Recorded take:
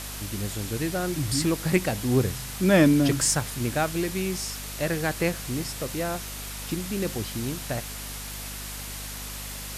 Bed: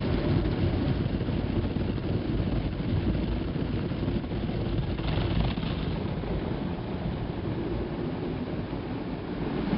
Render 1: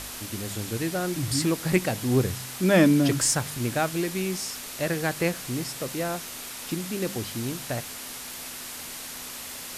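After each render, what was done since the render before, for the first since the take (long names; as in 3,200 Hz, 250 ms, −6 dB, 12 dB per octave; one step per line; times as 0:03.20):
hum removal 50 Hz, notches 4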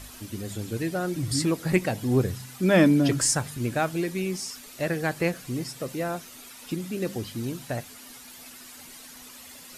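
broadband denoise 11 dB, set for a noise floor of −38 dBFS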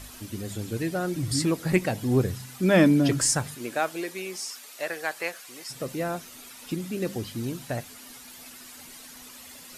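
0:03.54–0:05.69: high-pass filter 330 Hz → 860 Hz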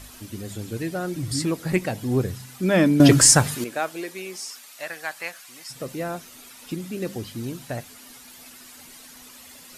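0:03.00–0:03.64: clip gain +10 dB
0:04.61–0:05.76: parametric band 410 Hz −10.5 dB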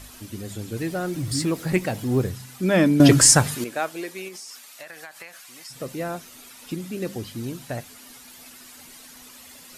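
0:00.77–0:02.29: mu-law and A-law mismatch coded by mu
0:04.28–0:05.80: downward compressor 12 to 1, threshold −35 dBFS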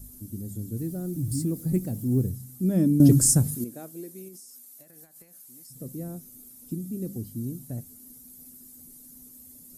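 drawn EQ curve 240 Hz 0 dB, 990 Hz −24 dB, 2,800 Hz −28 dB, 12,000 Hz +2 dB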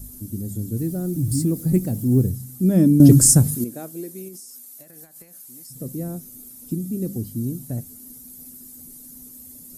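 level +6.5 dB
brickwall limiter −1 dBFS, peak gain reduction 1.5 dB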